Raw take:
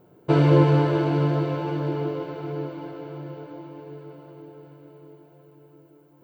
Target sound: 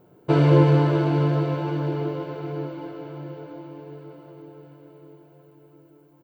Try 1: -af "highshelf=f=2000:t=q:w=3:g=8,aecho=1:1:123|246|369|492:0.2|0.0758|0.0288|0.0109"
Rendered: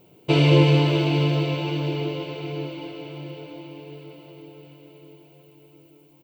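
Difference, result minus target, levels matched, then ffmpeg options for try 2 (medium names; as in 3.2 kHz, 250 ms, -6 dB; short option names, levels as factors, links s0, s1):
4 kHz band +12.5 dB
-af "aecho=1:1:123|246|369|492:0.2|0.0758|0.0288|0.0109"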